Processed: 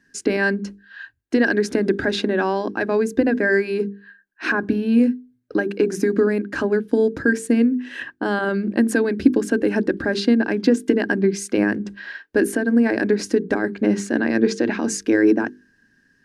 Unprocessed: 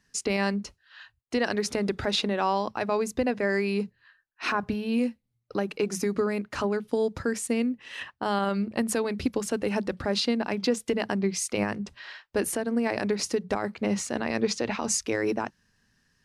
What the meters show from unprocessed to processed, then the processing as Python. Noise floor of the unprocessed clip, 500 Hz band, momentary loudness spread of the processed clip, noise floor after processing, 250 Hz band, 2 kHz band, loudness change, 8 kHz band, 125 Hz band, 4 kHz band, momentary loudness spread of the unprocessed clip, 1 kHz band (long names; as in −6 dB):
−74 dBFS, +7.5 dB, 8 LU, −62 dBFS, +10.0 dB, +10.0 dB, +8.0 dB, −1.0 dB, +5.0 dB, −0.5 dB, 6 LU, +1.0 dB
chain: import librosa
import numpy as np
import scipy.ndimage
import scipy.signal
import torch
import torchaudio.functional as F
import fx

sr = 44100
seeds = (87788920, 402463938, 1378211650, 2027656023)

y = fx.hum_notches(x, sr, base_hz=50, count=9)
y = fx.small_body(y, sr, hz=(300.0, 1600.0), ring_ms=25, db=18)
y = F.gain(torch.from_numpy(y), -1.0).numpy()